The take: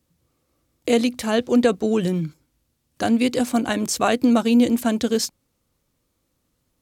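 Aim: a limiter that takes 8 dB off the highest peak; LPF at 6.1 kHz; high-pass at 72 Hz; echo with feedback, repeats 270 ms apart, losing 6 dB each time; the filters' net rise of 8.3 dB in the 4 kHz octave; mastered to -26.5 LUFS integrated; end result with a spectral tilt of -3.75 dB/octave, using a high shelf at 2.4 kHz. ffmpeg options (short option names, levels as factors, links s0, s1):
-af "highpass=72,lowpass=6100,highshelf=f=2400:g=8,equalizer=f=4000:t=o:g=4.5,alimiter=limit=0.335:level=0:latency=1,aecho=1:1:270|540|810|1080|1350|1620:0.501|0.251|0.125|0.0626|0.0313|0.0157,volume=0.501"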